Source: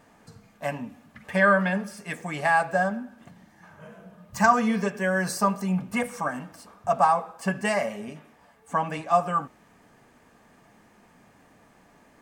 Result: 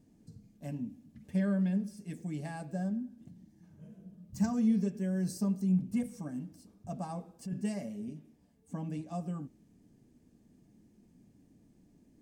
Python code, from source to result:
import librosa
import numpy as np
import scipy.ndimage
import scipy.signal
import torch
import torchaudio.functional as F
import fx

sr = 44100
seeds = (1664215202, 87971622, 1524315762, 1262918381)

y = fx.curve_eq(x, sr, hz=(320.0, 470.0, 1200.0, 5400.0), db=(0, -12, -28, -10))
y = fx.over_compress(y, sr, threshold_db=-31.0, ratio=-1.0, at=(7.09, 7.53), fade=0.02)
y = F.gain(torch.from_numpy(y), -2.0).numpy()